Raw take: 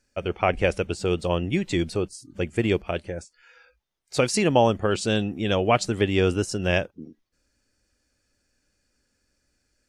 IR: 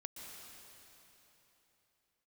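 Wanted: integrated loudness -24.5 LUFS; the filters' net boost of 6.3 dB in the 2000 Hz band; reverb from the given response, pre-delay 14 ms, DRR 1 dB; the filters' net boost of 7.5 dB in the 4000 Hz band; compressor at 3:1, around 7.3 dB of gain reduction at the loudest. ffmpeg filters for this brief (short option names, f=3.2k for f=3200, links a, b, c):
-filter_complex "[0:a]equalizer=f=2k:t=o:g=5.5,equalizer=f=4k:t=o:g=8,acompressor=threshold=-23dB:ratio=3,asplit=2[a][b];[1:a]atrim=start_sample=2205,adelay=14[c];[b][c]afir=irnorm=-1:irlink=0,volume=2dB[d];[a][d]amix=inputs=2:normalize=0,volume=0.5dB"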